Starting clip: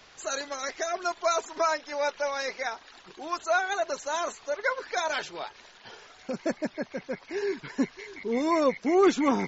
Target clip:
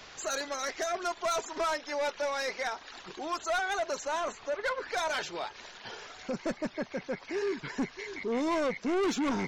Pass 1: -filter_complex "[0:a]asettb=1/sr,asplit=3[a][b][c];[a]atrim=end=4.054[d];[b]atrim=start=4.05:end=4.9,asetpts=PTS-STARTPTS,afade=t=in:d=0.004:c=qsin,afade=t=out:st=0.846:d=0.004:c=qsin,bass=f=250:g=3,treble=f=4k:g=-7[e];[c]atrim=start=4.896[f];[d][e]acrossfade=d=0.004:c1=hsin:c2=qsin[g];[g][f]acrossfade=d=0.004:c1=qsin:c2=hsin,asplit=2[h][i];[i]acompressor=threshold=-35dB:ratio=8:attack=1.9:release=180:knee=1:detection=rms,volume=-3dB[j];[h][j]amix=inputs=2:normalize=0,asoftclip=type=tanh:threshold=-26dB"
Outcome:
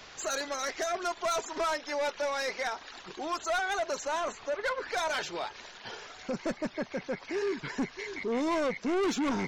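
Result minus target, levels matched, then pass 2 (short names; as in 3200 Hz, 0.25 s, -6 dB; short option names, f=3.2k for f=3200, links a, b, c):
compressor: peak gain reduction -6 dB
-filter_complex "[0:a]asettb=1/sr,asplit=3[a][b][c];[a]atrim=end=4.054[d];[b]atrim=start=4.05:end=4.9,asetpts=PTS-STARTPTS,afade=t=in:d=0.004:c=qsin,afade=t=out:st=0.846:d=0.004:c=qsin,bass=f=250:g=3,treble=f=4k:g=-7[e];[c]atrim=start=4.896[f];[d][e]acrossfade=d=0.004:c1=hsin:c2=qsin[g];[g][f]acrossfade=d=0.004:c1=qsin:c2=hsin,asplit=2[h][i];[i]acompressor=threshold=-42dB:ratio=8:attack=1.9:release=180:knee=1:detection=rms,volume=-3dB[j];[h][j]amix=inputs=2:normalize=0,asoftclip=type=tanh:threshold=-26dB"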